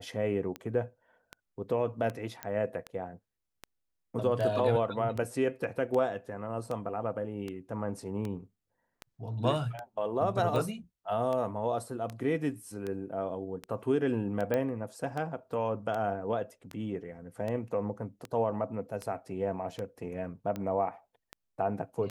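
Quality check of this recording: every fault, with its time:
tick 78 rpm -23 dBFS
2.43 pop -19 dBFS
14.54 pop -17 dBFS

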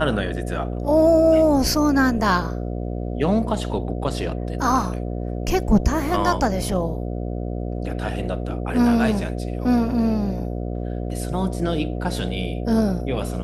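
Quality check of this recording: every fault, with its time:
buzz 60 Hz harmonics 12 -27 dBFS

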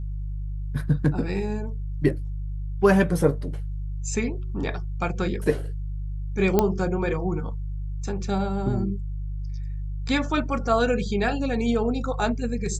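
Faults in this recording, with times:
hum 50 Hz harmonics 3 -30 dBFS
6.59 pop -6 dBFS

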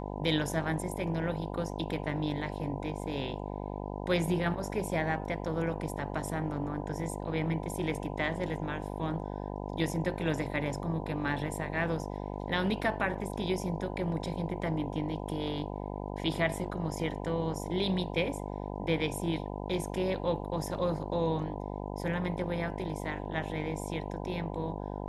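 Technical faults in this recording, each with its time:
buzz 50 Hz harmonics 20 -38 dBFS

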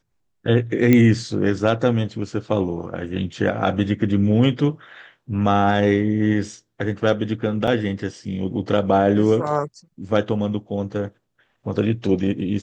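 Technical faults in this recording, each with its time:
0.93 pop -5 dBFS
7.67–7.68 gap 5.4 ms

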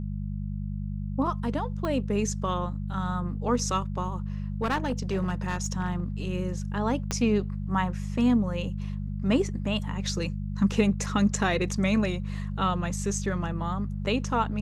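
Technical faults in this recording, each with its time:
hum 50 Hz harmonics 4 -32 dBFS
1.85 pop -18 dBFS
4.62–6.04 clipped -21.5 dBFS
7.11 pop -13 dBFS

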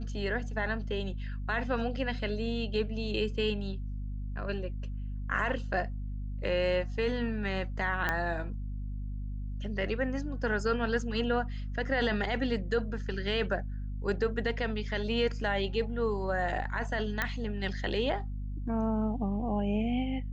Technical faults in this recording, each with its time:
hum 50 Hz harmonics 5 -36 dBFS
8.09 pop -15 dBFS
17.22 pop -14 dBFS

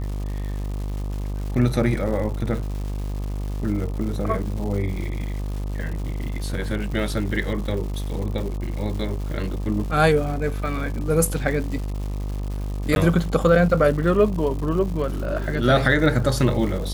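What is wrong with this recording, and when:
buzz 50 Hz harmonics 25 -27 dBFS
crackle 310/s -32 dBFS
12.95–12.96 gap 11 ms

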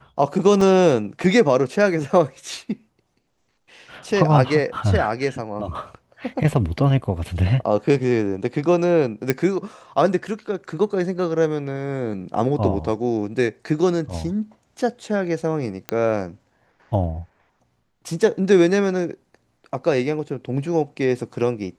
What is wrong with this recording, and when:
0.61 gap 3.2 ms
9.3 pop -5 dBFS
15.89 pop -10 dBFS

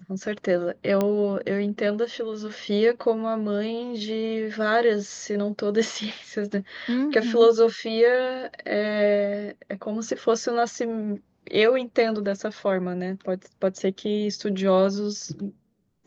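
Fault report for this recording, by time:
1.01 pop -11 dBFS

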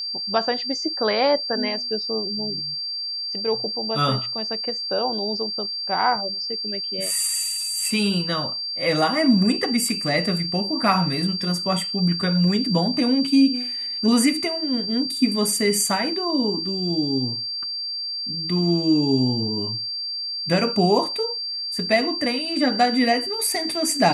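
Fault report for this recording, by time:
tone 4700 Hz -26 dBFS

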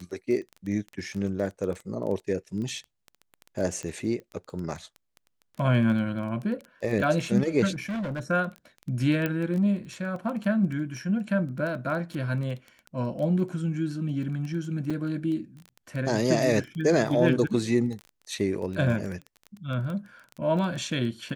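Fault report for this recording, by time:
crackle 12/s -32 dBFS
3.83 pop -23 dBFS
7.73–8.2 clipped -28 dBFS
9.26 pop -14 dBFS
14.9 gap 5 ms

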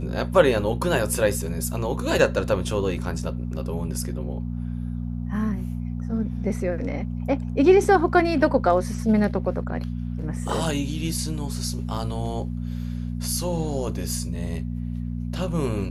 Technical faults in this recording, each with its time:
hum 60 Hz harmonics 4 -29 dBFS

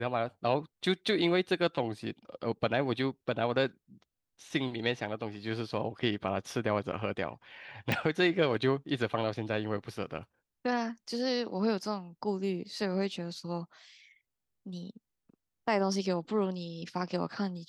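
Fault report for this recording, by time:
7.92 pop

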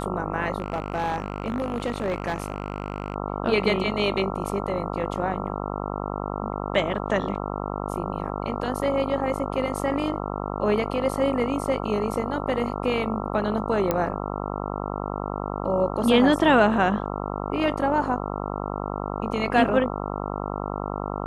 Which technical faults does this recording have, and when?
buzz 50 Hz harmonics 27 -30 dBFS
0.58–3.16 clipped -21 dBFS
13.91 pop -9 dBFS

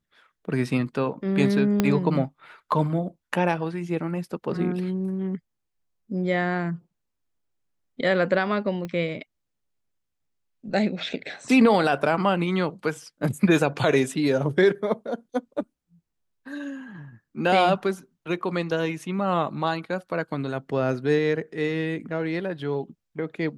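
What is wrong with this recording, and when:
1.8 pop -7 dBFS
8.85 pop -20 dBFS

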